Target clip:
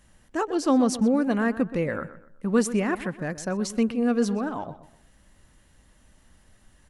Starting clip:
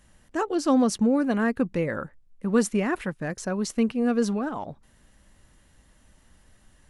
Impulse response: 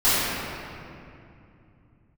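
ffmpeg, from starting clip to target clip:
-filter_complex "[0:a]asplit=2[a][b];[b]adelay=125,lowpass=f=3.1k:p=1,volume=-14dB,asplit=2[c][d];[d]adelay=125,lowpass=f=3.1k:p=1,volume=0.35,asplit=2[e][f];[f]adelay=125,lowpass=f=3.1k:p=1,volume=0.35[g];[a][c][e][g]amix=inputs=4:normalize=0"

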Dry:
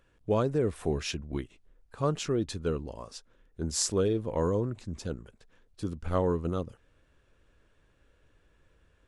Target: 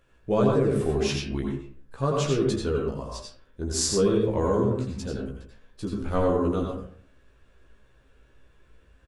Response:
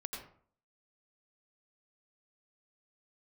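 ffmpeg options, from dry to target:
-filter_complex "[0:a]asplit=2[a][b];[b]adelay=15,volume=-3.5dB[c];[a][c]amix=inputs=2:normalize=0[d];[1:a]atrim=start_sample=2205[e];[d][e]afir=irnorm=-1:irlink=0,volume=4.5dB"

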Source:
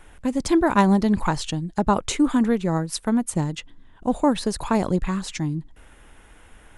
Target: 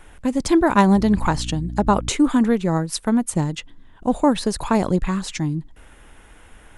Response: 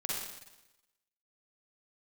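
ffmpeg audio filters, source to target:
-filter_complex "[0:a]asettb=1/sr,asplit=3[a][b][c];[a]atrim=end=0.954[d];[b]atrim=start=0.95:end=2.09,asetpts=PTS-STARTPTS,afade=t=in:d=0.004:c=qsin,afade=t=out:st=1.136:d=0.004:c=qsin,aeval=exprs='val(0)+0.0282*(sin(2*PI*60*n/s)+sin(2*PI*2*60*n/s)/2+sin(2*PI*3*60*n/s)/3+sin(2*PI*4*60*n/s)/4+sin(2*PI*5*60*n/s)/5)':c=same[e];[c]atrim=start=2.086[f];[d][e]acrossfade=d=0.004:c1=hsin:c2=qsin[g];[g][f]acrossfade=d=0.004:c1=qsin:c2=hsin,volume=2.5dB"

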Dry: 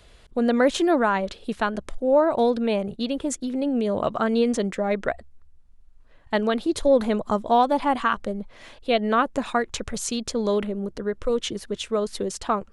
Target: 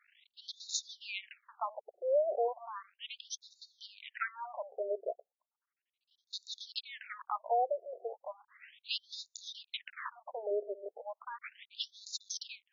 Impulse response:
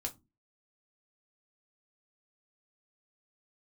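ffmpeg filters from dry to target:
-af "aemphasis=mode=production:type=75fm,aeval=exprs='max(val(0),0)':c=same,afftfilt=real='re*between(b*sr/1024,490*pow(5100/490,0.5+0.5*sin(2*PI*0.35*pts/sr))/1.41,490*pow(5100/490,0.5+0.5*sin(2*PI*0.35*pts/sr))*1.41)':imag='im*between(b*sr/1024,490*pow(5100/490,0.5+0.5*sin(2*PI*0.35*pts/sr))/1.41,490*pow(5100/490,0.5+0.5*sin(2*PI*0.35*pts/sr))*1.41)':win_size=1024:overlap=0.75,volume=-3.5dB"

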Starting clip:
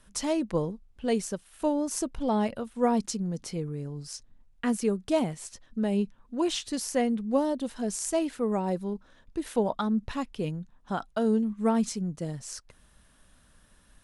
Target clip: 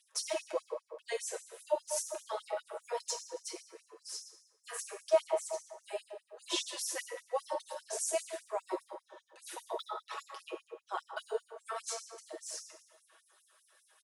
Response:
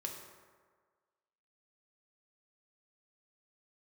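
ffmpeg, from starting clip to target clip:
-filter_complex "[0:a]aphaser=in_gain=1:out_gain=1:delay=4:decay=0.51:speed=0.38:type=sinusoidal,aecho=1:1:6.2:0.65[a];[1:a]atrim=start_sample=2205[b];[a][b]afir=irnorm=-1:irlink=0,afftfilt=real='re*gte(b*sr/1024,340*pow(5400/340,0.5+0.5*sin(2*PI*5*pts/sr)))':imag='im*gte(b*sr/1024,340*pow(5400/340,0.5+0.5*sin(2*PI*5*pts/sr)))':win_size=1024:overlap=0.75,volume=-3dB"

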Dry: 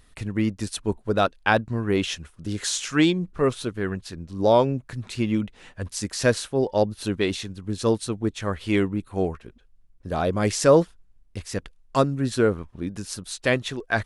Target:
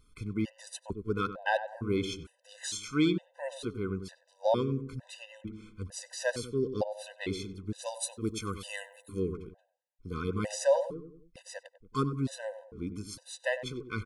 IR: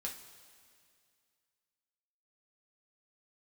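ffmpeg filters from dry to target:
-filter_complex "[0:a]asplit=3[a][b][c];[a]afade=t=out:st=7.82:d=0.02[d];[b]aemphasis=mode=production:type=75fm,afade=t=in:st=7.82:d=0.02,afade=t=out:st=9.18:d=0.02[e];[c]afade=t=in:st=9.18:d=0.02[f];[d][e][f]amix=inputs=3:normalize=0,asplit=2[g][h];[h]adelay=95,lowpass=f=1k:p=1,volume=-9dB,asplit=2[i][j];[j]adelay=95,lowpass=f=1k:p=1,volume=0.47,asplit=2[k][l];[l]adelay=95,lowpass=f=1k:p=1,volume=0.47,asplit=2[m][n];[n]adelay=95,lowpass=f=1k:p=1,volume=0.47,asplit=2[o][p];[p]adelay=95,lowpass=f=1k:p=1,volume=0.47[q];[g][i][k][m][o][q]amix=inputs=6:normalize=0,afftfilt=real='re*gt(sin(2*PI*1.1*pts/sr)*(1-2*mod(floor(b*sr/1024/510),2)),0)':imag='im*gt(sin(2*PI*1.1*pts/sr)*(1-2*mod(floor(b*sr/1024/510),2)),0)':win_size=1024:overlap=0.75,volume=-7dB"

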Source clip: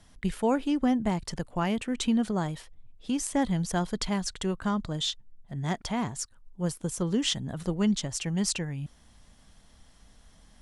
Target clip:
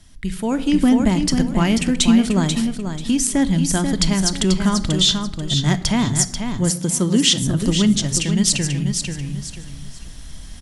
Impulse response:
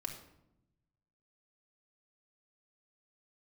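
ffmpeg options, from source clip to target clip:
-filter_complex "[0:a]asplit=2[a][b];[b]acompressor=threshold=-33dB:ratio=6,volume=0dB[c];[a][c]amix=inputs=2:normalize=0,equalizer=f=750:t=o:w=2.5:g=-10,aecho=1:1:488|976|1464:0.447|0.112|0.0279,asplit=2[d][e];[1:a]atrim=start_sample=2205[f];[e][f]afir=irnorm=-1:irlink=0,volume=-4.5dB[g];[d][g]amix=inputs=2:normalize=0,dynaudnorm=f=160:g=7:m=10dB,asettb=1/sr,asplit=3[h][i][j];[h]atrim=end=6.704[k];[i]atrim=start=6.7:end=7.42,asetpts=PTS-STARTPTS,afade=t=in:d=0.004:c=qsin,afade=t=out:st=0.716:d=0.004:c=qsin,highpass=130[l];[j]atrim=start=7.416[m];[k][l]acrossfade=d=0.004:c1=hsin:c2=qsin[n];[n][m]acrossfade=d=0.004:c1=qsin:c2=hsin"

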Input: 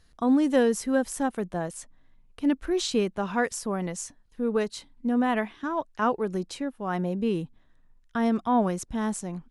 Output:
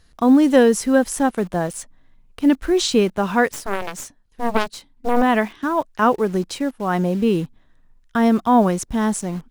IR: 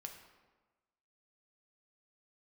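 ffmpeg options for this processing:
-filter_complex "[0:a]asplit=2[a][b];[b]acrusher=bits=6:mix=0:aa=0.000001,volume=-8dB[c];[a][c]amix=inputs=2:normalize=0,asplit=3[d][e][f];[d]afade=t=out:st=3.51:d=0.02[g];[e]aeval=exprs='0.282*(cos(1*acos(clip(val(0)/0.282,-1,1)))-cos(1*PI/2))+0.0891*(cos(3*acos(clip(val(0)/0.282,-1,1)))-cos(3*PI/2))+0.0562*(cos(4*acos(clip(val(0)/0.282,-1,1)))-cos(4*PI/2))+0.0251*(cos(7*acos(clip(val(0)/0.282,-1,1)))-cos(7*PI/2))':c=same,afade=t=in:st=3.51:d=0.02,afade=t=out:st=5.21:d=0.02[h];[f]afade=t=in:st=5.21:d=0.02[i];[g][h][i]amix=inputs=3:normalize=0,volume=5.5dB"

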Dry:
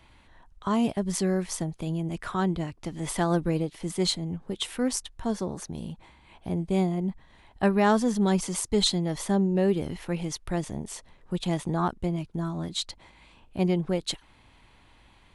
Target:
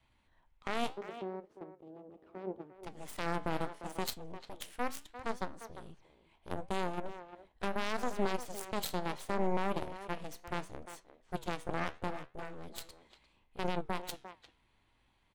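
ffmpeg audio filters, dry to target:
-filter_complex "[0:a]adynamicequalizer=threshold=0.00631:dfrequency=350:dqfactor=4.2:tfrequency=350:tqfactor=4.2:attack=5:release=100:ratio=0.375:range=2.5:mode=boostabove:tftype=bell,alimiter=limit=-17.5dB:level=0:latency=1:release=56,aeval=exprs='0.133*(cos(1*acos(clip(val(0)/0.133,-1,1)))-cos(1*PI/2))+0.0596*(cos(3*acos(clip(val(0)/0.133,-1,1)))-cos(3*PI/2))+0.0075*(cos(8*acos(clip(val(0)/0.133,-1,1)))-cos(8*PI/2))':c=same,asettb=1/sr,asplit=3[a][b][c];[a]atrim=end=0.894[d];[b]atrim=start=0.89:end=2.75,asetpts=PTS-STARTPTS,afade=t=in:d=0.004:c=qsin,afade=t=out:st=1.856:d=0.004:c=qsin,bandpass=f=350:t=q:w=1.9:csg=0[e];[c]atrim=start=2.746[f];[d][e]acrossfade=d=0.004:c1=hsin:c2=qsin[g];[g][f]acrossfade=d=0.004:c1=qsin:c2=hsin,flanger=delay=7.5:depth=9:regen=79:speed=0.73:shape=sinusoidal,asplit=2[h][i];[i]adelay=350,highpass=300,lowpass=3.4k,asoftclip=type=hard:threshold=-25dB,volume=-11dB[j];[h][j]amix=inputs=2:normalize=0,volume=-1.5dB"

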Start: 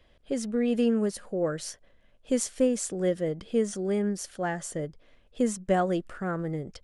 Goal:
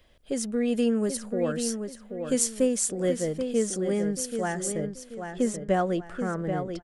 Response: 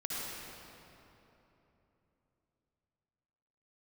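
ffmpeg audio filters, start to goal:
-filter_complex "[0:a]asetnsamples=n=441:p=0,asendcmd='4.72 highshelf g -2',highshelf=f=6.9k:g=11.5,asplit=2[a][b];[b]adelay=783,lowpass=f=4k:p=1,volume=-7dB,asplit=2[c][d];[d]adelay=783,lowpass=f=4k:p=1,volume=0.34,asplit=2[e][f];[f]adelay=783,lowpass=f=4k:p=1,volume=0.34,asplit=2[g][h];[h]adelay=783,lowpass=f=4k:p=1,volume=0.34[i];[a][c][e][g][i]amix=inputs=5:normalize=0"

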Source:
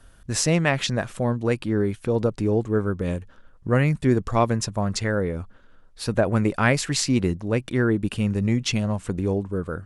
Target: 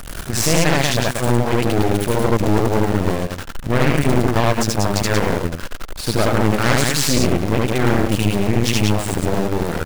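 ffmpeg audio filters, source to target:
-af "aeval=exprs='val(0)+0.5*0.0596*sgn(val(0))':c=same,aecho=1:1:75.8|183.7:1|0.631,aeval=exprs='0.891*(cos(1*acos(clip(val(0)/0.891,-1,1)))-cos(1*PI/2))+0.2*(cos(8*acos(clip(val(0)/0.891,-1,1)))-cos(8*PI/2))':c=same,volume=-3dB"

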